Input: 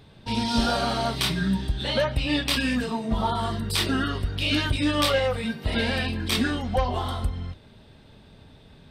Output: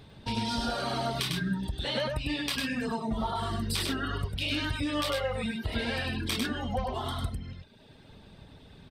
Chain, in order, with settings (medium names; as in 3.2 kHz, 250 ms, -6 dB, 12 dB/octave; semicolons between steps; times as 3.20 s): reverb removal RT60 1 s; compression, threshold -29 dBFS, peak gain reduction 11 dB; on a send: delay 100 ms -3.5 dB